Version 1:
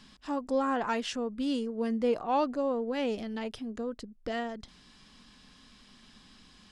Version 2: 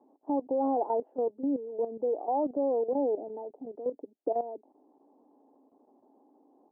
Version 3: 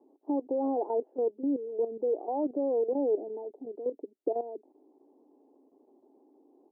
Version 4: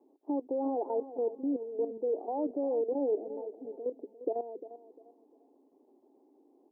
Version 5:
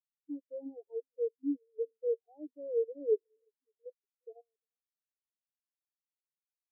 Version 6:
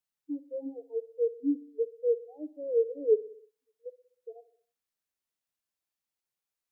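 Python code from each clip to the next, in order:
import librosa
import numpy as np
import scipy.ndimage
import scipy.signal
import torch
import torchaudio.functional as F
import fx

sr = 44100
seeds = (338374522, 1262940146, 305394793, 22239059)

y1 = scipy.signal.sosfilt(scipy.signal.cheby1(4, 1.0, [280.0, 860.0], 'bandpass', fs=sr, output='sos'), x)
y1 = fx.level_steps(y1, sr, step_db=12)
y1 = y1 * 10.0 ** (9.0 / 20.0)
y2 = fx.peak_eq(y1, sr, hz=370.0, db=12.5, octaves=0.96)
y2 = y2 * 10.0 ** (-7.0 / 20.0)
y3 = fx.echo_feedback(y2, sr, ms=350, feedback_pct=28, wet_db=-14)
y3 = y3 * 10.0 ** (-2.5 / 20.0)
y4 = fx.spectral_expand(y3, sr, expansion=4.0)
y5 = fx.echo_feedback(y4, sr, ms=62, feedback_pct=56, wet_db=-17.5)
y5 = y5 * 10.0 ** (5.0 / 20.0)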